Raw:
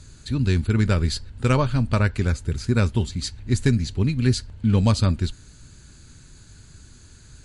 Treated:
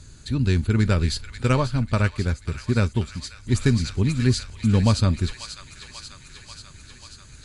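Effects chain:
delay with a high-pass on its return 539 ms, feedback 71%, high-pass 1,600 Hz, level −7 dB
0:01.43–0:03.47: expander for the loud parts 1.5 to 1, over −31 dBFS

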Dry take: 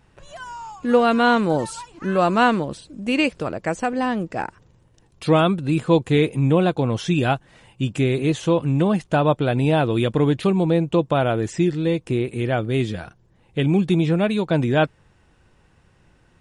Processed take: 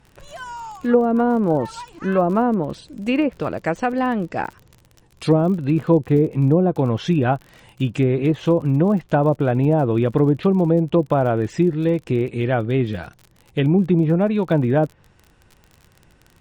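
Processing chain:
treble cut that deepens with the level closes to 570 Hz, closed at −12.5 dBFS
surface crackle 37 per second −34 dBFS
level +2 dB

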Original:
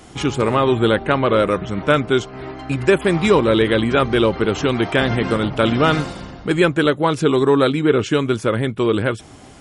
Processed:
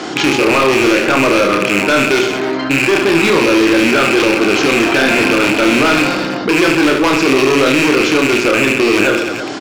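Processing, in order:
loose part that buzzes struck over −24 dBFS, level −7 dBFS
loudspeaker in its box 260–6,400 Hz, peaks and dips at 320 Hz +8 dB, 1,500 Hz +5 dB, 4,500 Hz +5 dB
in parallel at 0 dB: brickwall limiter −6 dBFS, peak gain reduction 7 dB
on the sum: gain into a clipping stage and back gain 9 dB
on a send: reverse bouncing-ball delay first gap 30 ms, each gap 1.4×, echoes 5
on the sum: envelope flattener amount 50%
level −2.5 dB

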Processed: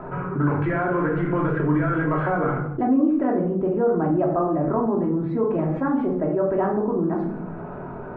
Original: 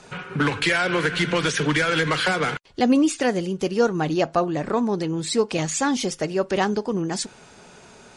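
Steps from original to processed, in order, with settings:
low-pass filter 1,300 Hz 24 dB per octave
rectangular room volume 770 cubic metres, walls furnished, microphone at 2.9 metres
envelope flattener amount 50%
level −8.5 dB

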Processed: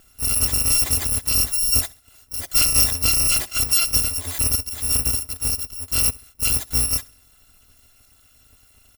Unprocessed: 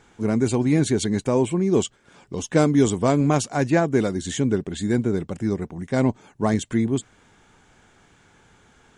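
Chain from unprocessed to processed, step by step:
samples in bit-reversed order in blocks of 256 samples
low-shelf EQ 490 Hz +6 dB
on a send: repeating echo 67 ms, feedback 37%, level −22.5 dB
on the sum: every ending faded ahead of time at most 540 dB per second

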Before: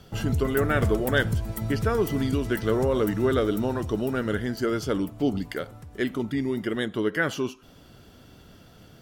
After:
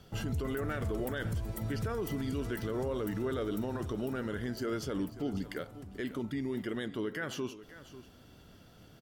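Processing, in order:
brickwall limiter −20.5 dBFS, peak gain reduction 11 dB
on a send: single-tap delay 543 ms −15.5 dB
on the sum: level −6 dB

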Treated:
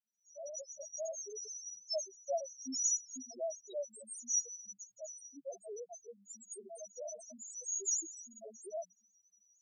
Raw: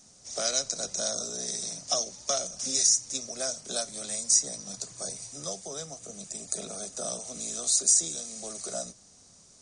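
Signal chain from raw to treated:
fade in at the beginning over 0.99 s
spectral peaks only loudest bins 1
elliptic high-pass filter 250 Hz, stop band 40 dB
level +5 dB

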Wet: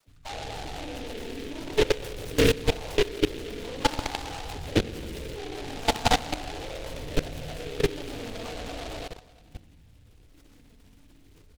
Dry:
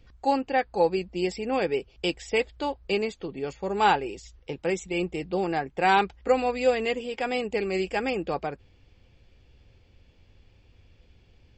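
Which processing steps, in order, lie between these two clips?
feedback delay that plays each chunk backwards 115 ms, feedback 58%, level −4 dB
dynamic equaliser 2,300 Hz, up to −7 dB, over −43 dBFS, Q 1.5
in parallel at 0 dB: brickwall limiter −19.5 dBFS, peak gain reduction 10.5 dB
on the sum: downward compressor 1.5 to 1, threshold −31 dBFS, peak gain reduction 6.5 dB
notch comb filter 170 Hz
linear-prediction vocoder at 8 kHz whisper
all-pass dispersion lows, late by 74 ms, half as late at 520 Hz
phase shifter 0.42 Hz, delay 4.7 ms, feedback 58%
on a send: bouncing-ball delay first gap 120 ms, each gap 0.75×, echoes 5
on the sum: feedback delay network reverb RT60 0.65 s, low-frequency decay 1.35×, high-frequency decay 0.25×, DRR 4.5 dB
output level in coarse steps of 18 dB
short delay modulated by noise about 2,600 Hz, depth 0.14 ms

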